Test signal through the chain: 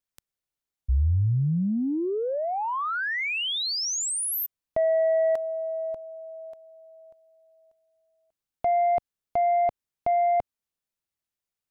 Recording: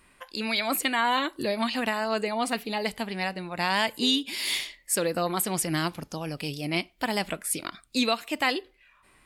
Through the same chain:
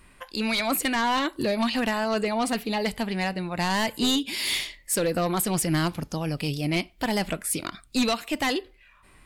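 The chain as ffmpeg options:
ffmpeg -i in.wav -af "aeval=exprs='0.316*(cos(1*acos(clip(val(0)/0.316,-1,1)))-cos(1*PI/2))+0.141*(cos(5*acos(clip(val(0)/0.316,-1,1)))-cos(5*PI/2))':channel_layout=same,lowshelf=frequency=160:gain=9,volume=-7.5dB" out.wav

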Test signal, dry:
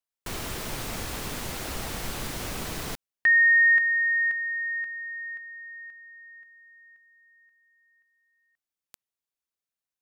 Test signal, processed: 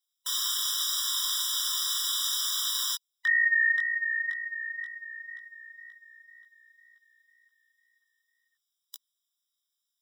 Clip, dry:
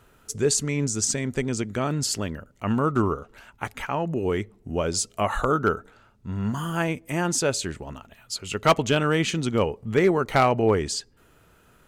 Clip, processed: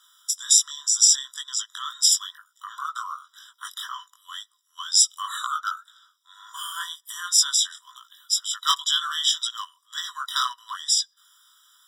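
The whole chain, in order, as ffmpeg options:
ffmpeg -i in.wav -af "highshelf=frequency=2900:width_type=q:width=3:gain=10,flanger=delay=16.5:depth=5.5:speed=2,afftfilt=real='re*eq(mod(floor(b*sr/1024/990),2),1)':imag='im*eq(mod(floor(b*sr/1024/990),2),1)':win_size=1024:overlap=0.75,volume=3.5dB" out.wav

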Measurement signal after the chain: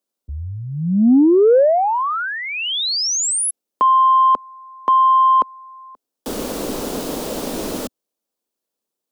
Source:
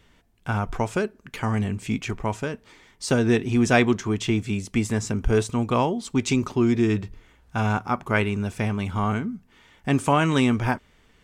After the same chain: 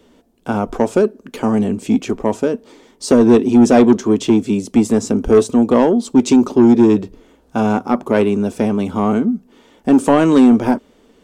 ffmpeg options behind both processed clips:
ffmpeg -i in.wav -filter_complex "[0:a]equalizer=frequency=125:width_type=o:width=1:gain=-9,equalizer=frequency=250:width_type=o:width=1:gain=10,equalizer=frequency=500:width_type=o:width=1:gain=8,equalizer=frequency=2000:width_type=o:width=1:gain=-8,acrossover=split=110[link_01][link_02];[link_02]acontrast=83[link_03];[link_01][link_03]amix=inputs=2:normalize=0,volume=-1.5dB" out.wav

